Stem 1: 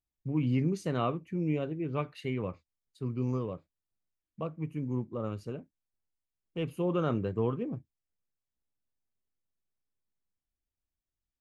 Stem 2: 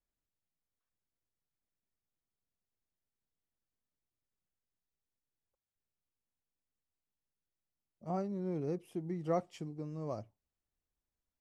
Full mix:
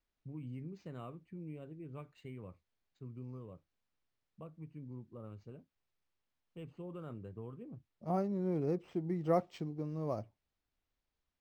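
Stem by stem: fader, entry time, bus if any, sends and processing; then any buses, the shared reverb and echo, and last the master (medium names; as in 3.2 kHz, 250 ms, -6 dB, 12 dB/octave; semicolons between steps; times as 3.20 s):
-14.0 dB, 0.00 s, no send, bass shelf 140 Hz +7.5 dB; compression 2:1, threshold -31 dBFS, peak gain reduction 6 dB
+2.5 dB, 0.00 s, no send, none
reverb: none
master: decimation joined by straight lines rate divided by 4×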